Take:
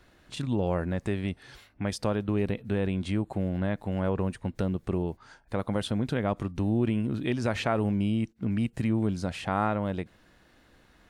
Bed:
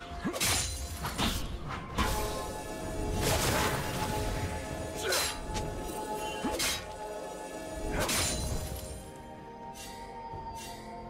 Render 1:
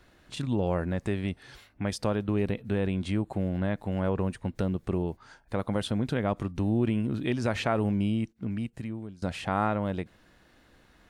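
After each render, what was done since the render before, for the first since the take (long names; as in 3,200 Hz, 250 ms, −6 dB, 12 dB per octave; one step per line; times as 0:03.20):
0:08.05–0:09.22: fade out, to −20.5 dB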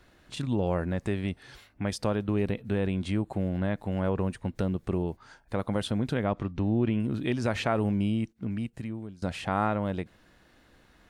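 0:06.25–0:07.00: low-pass filter 4,300 Hz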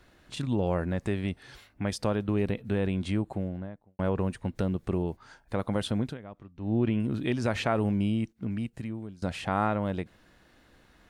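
0:03.12–0:03.99: fade out and dull
0:06.01–0:06.75: duck −16.5 dB, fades 0.17 s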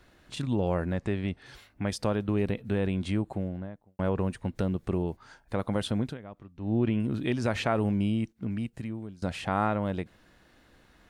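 0:00.98–0:01.46: high-frequency loss of the air 64 metres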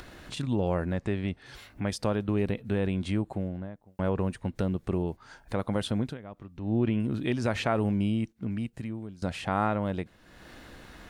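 upward compression, threshold −36 dBFS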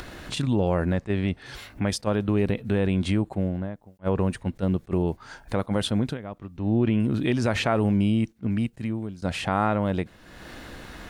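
in parallel at +2 dB: brickwall limiter −24 dBFS, peak gain reduction 10.5 dB
on the sum: level that may rise only so fast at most 510 dB per second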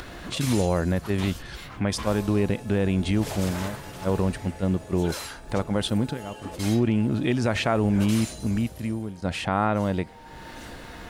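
mix in bed −5.5 dB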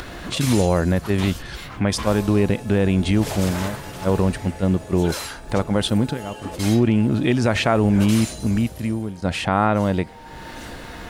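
level +5 dB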